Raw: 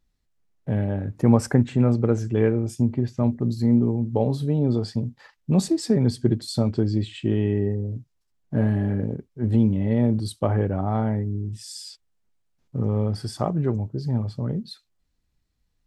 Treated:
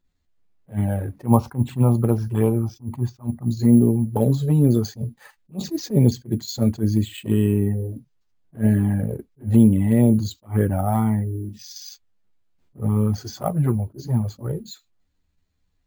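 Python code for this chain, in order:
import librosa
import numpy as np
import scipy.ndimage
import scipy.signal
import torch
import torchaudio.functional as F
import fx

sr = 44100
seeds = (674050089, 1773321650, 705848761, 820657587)

y = fx.env_flanger(x, sr, rest_ms=11.2, full_db=-15.0)
y = fx.graphic_eq(y, sr, hz=(250, 500, 1000, 2000), db=(-3, -7, 10, -9), at=(1.26, 3.46))
y = np.repeat(scipy.signal.resample_poly(y, 1, 4), 4)[:len(y)]
y = fx.doubler(y, sr, ms=14.0, db=-14.0)
y = fx.attack_slew(y, sr, db_per_s=300.0)
y = y * 10.0 ** (5.5 / 20.0)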